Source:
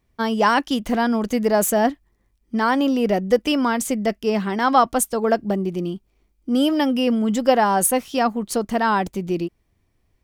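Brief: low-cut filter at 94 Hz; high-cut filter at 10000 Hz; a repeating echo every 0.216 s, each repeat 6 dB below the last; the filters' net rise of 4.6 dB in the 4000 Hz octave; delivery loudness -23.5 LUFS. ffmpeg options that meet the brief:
-af "highpass=94,lowpass=10k,equalizer=f=4k:t=o:g=7,aecho=1:1:216|432|648|864|1080|1296:0.501|0.251|0.125|0.0626|0.0313|0.0157,volume=-4.5dB"

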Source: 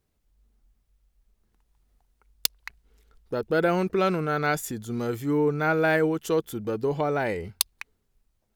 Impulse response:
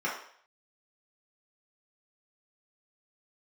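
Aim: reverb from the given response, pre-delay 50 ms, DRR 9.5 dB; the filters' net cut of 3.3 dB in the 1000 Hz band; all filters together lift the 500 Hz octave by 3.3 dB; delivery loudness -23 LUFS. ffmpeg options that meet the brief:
-filter_complex "[0:a]equalizer=f=500:t=o:g=5.5,equalizer=f=1k:t=o:g=-7.5,asplit=2[a][b];[1:a]atrim=start_sample=2205,adelay=50[c];[b][c]afir=irnorm=-1:irlink=0,volume=-18.5dB[d];[a][d]amix=inputs=2:normalize=0,volume=1dB"

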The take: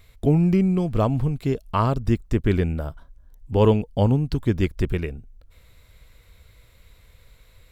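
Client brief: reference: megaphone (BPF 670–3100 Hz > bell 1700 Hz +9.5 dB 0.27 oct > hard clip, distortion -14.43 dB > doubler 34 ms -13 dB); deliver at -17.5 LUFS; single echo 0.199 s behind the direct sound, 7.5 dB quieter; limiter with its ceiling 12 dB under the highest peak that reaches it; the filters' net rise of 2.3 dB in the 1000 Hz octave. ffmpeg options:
-filter_complex "[0:a]equalizer=f=1k:t=o:g=3.5,alimiter=limit=-16.5dB:level=0:latency=1,highpass=670,lowpass=3.1k,equalizer=f=1.7k:t=o:w=0.27:g=9.5,aecho=1:1:199:0.422,asoftclip=type=hard:threshold=-24.5dB,asplit=2[a][b];[b]adelay=34,volume=-13dB[c];[a][c]amix=inputs=2:normalize=0,volume=20dB"

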